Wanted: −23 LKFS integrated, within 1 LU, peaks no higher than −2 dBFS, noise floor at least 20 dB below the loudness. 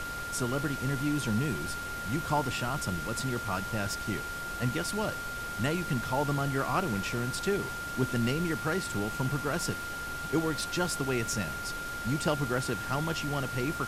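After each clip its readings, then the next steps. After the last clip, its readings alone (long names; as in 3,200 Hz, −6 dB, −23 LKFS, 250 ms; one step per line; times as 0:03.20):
interfering tone 1,400 Hz; level of the tone −36 dBFS; background noise floor −37 dBFS; target noise floor −52 dBFS; integrated loudness −31.5 LKFS; sample peak −15.5 dBFS; target loudness −23.0 LKFS
→ notch filter 1,400 Hz, Q 30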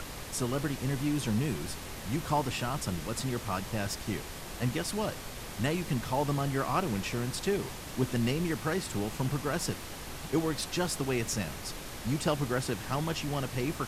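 interfering tone none found; background noise floor −42 dBFS; target noise floor −53 dBFS
→ noise reduction from a noise print 11 dB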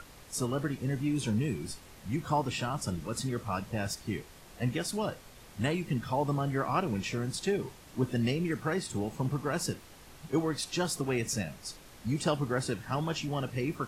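background noise floor −53 dBFS; integrated loudness −33.0 LKFS; sample peak −16.0 dBFS; target loudness −23.0 LKFS
→ level +10 dB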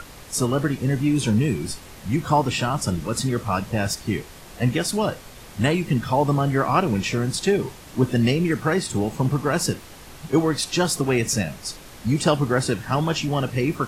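integrated loudness −23.0 LKFS; sample peak −6.0 dBFS; background noise floor −43 dBFS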